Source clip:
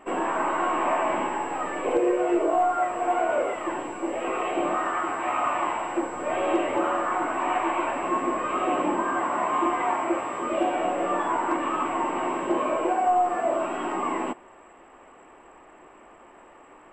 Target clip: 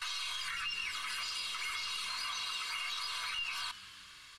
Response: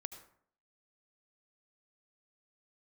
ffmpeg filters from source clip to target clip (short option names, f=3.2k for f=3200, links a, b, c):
-filter_complex "[0:a]equalizer=f=140:w=1.4:g=-9.5,aecho=1:1:7.1:0.7,acrossover=split=210[a][b];[a]alimiter=level_in=18dB:limit=-24dB:level=0:latency=1:release=102,volume=-18dB[c];[b]acompressor=threshold=-31dB:ratio=6[d];[c][d]amix=inputs=2:normalize=0,asetrate=170226,aresample=44100,asplit=7[e][f][g][h][i][j][k];[f]adelay=174,afreqshift=93,volume=-17dB[l];[g]adelay=348,afreqshift=186,volume=-21dB[m];[h]adelay=522,afreqshift=279,volume=-25dB[n];[i]adelay=696,afreqshift=372,volume=-29dB[o];[j]adelay=870,afreqshift=465,volume=-33.1dB[p];[k]adelay=1044,afreqshift=558,volume=-37.1dB[q];[e][l][m][n][o][p][q]amix=inputs=7:normalize=0,volume=-5.5dB"